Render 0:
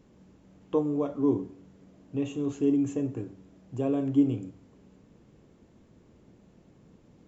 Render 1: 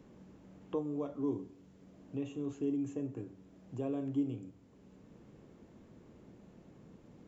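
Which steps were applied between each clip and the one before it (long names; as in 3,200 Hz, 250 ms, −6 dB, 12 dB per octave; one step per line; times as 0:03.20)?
multiband upward and downward compressor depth 40%
level −8.5 dB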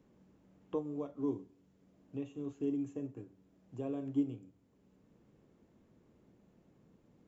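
expander for the loud parts 1.5 to 1, over −49 dBFS
level +1.5 dB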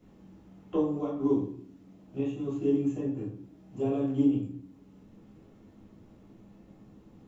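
convolution reverb RT60 0.55 s, pre-delay 3 ms, DRR −7 dB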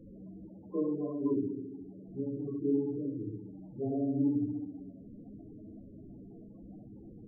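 converter with a step at zero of −40.5 dBFS
tape delay 66 ms, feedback 80%, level −5 dB, low-pass 1,100 Hz
spectral peaks only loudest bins 16
level −6 dB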